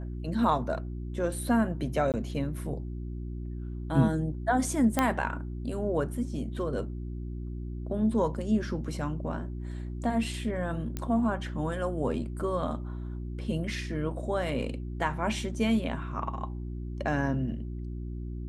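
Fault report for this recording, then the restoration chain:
hum 60 Hz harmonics 6 -36 dBFS
2.12–2.14 s: dropout 18 ms
4.99 s: pop -10 dBFS
10.97 s: pop -18 dBFS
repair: de-click; de-hum 60 Hz, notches 6; interpolate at 2.12 s, 18 ms

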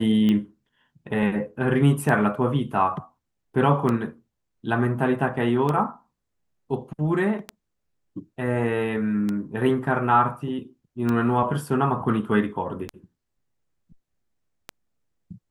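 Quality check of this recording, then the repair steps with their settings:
tick 33 1/3 rpm -14 dBFS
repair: de-click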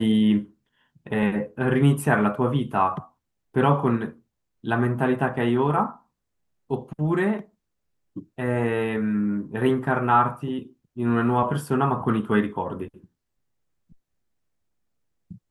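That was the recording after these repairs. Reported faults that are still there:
nothing left

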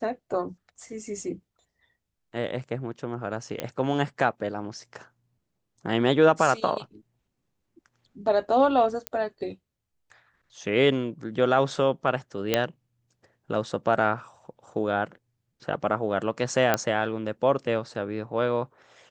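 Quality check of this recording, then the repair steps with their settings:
3.60 s: pop -14 dBFS
9.07 s: pop -12 dBFS
12.54 s: pop -6 dBFS
16.74 s: pop -7 dBFS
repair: de-click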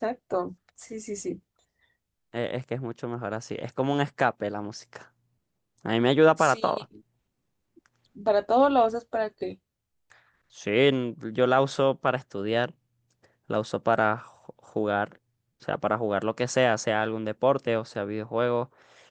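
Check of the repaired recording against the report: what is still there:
12.54 s: pop

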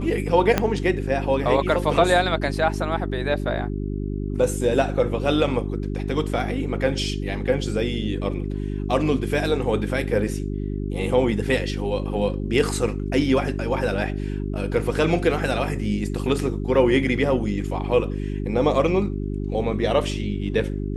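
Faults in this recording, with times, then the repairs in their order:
hum 50 Hz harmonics 8 -27 dBFS
0.58 s: pop -5 dBFS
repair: de-click; de-hum 50 Hz, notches 8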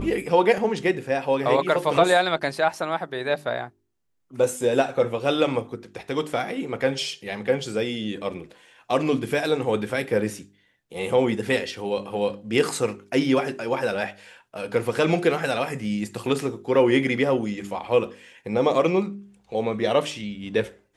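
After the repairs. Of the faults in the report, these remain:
0.58 s: pop

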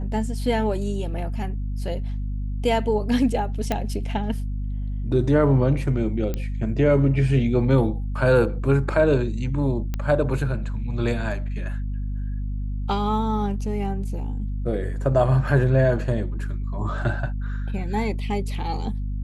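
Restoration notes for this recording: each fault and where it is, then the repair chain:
hum 50 Hz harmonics 5 -27 dBFS
3.72 s: pop -10 dBFS
6.34 s: pop -14 dBFS
9.94 s: pop -14 dBFS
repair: de-click; de-hum 50 Hz, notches 5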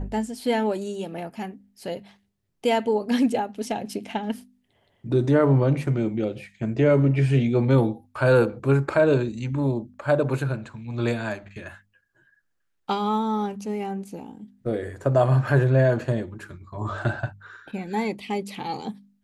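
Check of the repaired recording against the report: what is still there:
nothing left

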